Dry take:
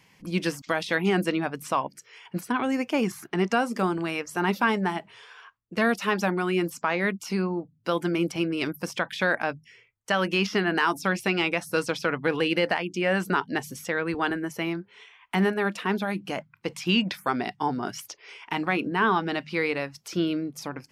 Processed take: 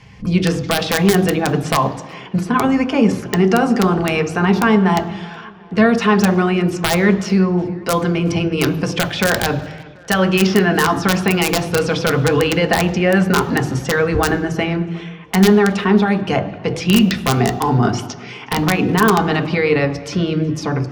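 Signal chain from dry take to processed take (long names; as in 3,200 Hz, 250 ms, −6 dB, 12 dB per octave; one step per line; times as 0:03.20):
low-pass filter 6,000 Hz 12 dB per octave
low-shelf EQ 89 Hz +11.5 dB
in parallel at −2 dB: compressor whose output falls as the input rises −29 dBFS, ratio −1
on the sum: wrap-around overflow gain 11 dB
tape delay 368 ms, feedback 62%, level −21.5 dB, low-pass 4,000 Hz
on a send at −2.5 dB: convolution reverb RT60 1.0 s, pre-delay 3 ms
on the sum: level +3.5 dB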